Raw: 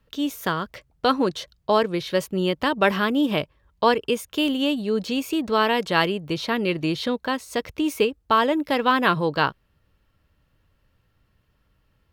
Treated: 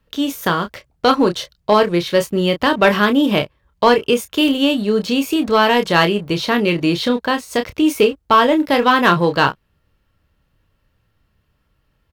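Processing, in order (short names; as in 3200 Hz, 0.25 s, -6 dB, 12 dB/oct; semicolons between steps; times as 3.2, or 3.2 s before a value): doubler 29 ms -8 dB; sample leveller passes 1; gain +3 dB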